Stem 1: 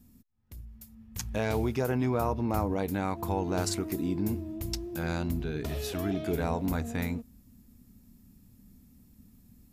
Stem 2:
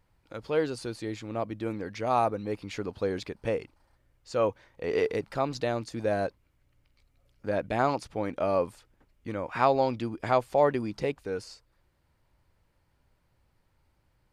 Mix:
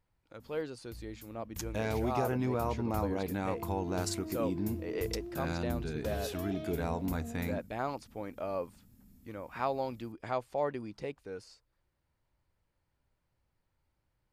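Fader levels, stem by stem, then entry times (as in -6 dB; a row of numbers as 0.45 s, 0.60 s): -4.0 dB, -9.5 dB; 0.40 s, 0.00 s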